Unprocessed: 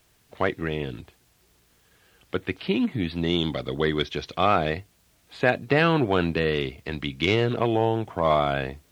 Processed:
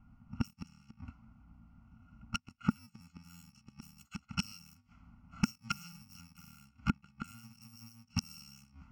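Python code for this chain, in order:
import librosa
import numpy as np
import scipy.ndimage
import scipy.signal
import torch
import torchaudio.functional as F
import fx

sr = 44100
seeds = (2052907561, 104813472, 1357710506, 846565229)

y = fx.bit_reversed(x, sr, seeds[0], block=128)
y = fx.peak_eq(y, sr, hz=400.0, db=-14.5, octaves=0.86)
y = fx.env_lowpass(y, sr, base_hz=710.0, full_db=-20.5)
y = fx.fixed_phaser(y, sr, hz=2500.0, stages=8)
y = fx.gate_flip(y, sr, shuts_db=-29.0, range_db=-37)
y = fx.small_body(y, sr, hz=(230.0, 1400.0), ring_ms=35, db=14)
y = y * 10.0 ** (9.0 / 20.0)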